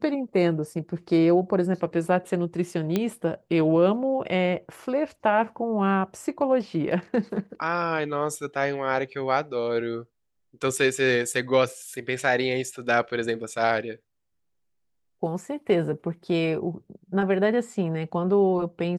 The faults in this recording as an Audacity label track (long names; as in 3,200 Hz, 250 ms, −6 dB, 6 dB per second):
2.960000	2.960000	click −11 dBFS